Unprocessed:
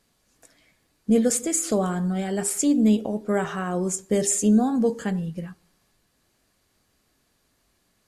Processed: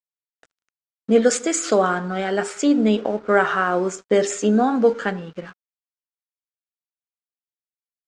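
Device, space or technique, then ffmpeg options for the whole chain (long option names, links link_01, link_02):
pocket radio on a weak battery: -filter_complex "[0:a]asettb=1/sr,asplit=3[link_01][link_02][link_03];[link_01]atrim=end=1.224[link_04];[link_02]atrim=start=1.22:end=1.82,asetpts=PTS-STARTPTS,afade=type=in:duration=0.004:curve=qsin,afade=type=out:start_time=0.596:duration=0.004:curve=qsin,aemphasis=mode=production:type=cd[link_05];[link_03]atrim=start=1.816[link_06];[link_04][link_05]acrossfade=duration=0.004:curve1=hsin:curve2=qsin[link_07];[link_07][link_06]acrossfade=duration=0.004:curve1=qsin:curve2=hsin,highpass=350,lowpass=3900,aeval=exprs='sgn(val(0))*max(abs(val(0))-0.00237,0)':channel_layout=same,lowpass=frequency=8200:width=0.5412,lowpass=frequency=8200:width=1.3066,equalizer=frequency=1400:width_type=o:width=0.38:gain=7.5,volume=8.5dB"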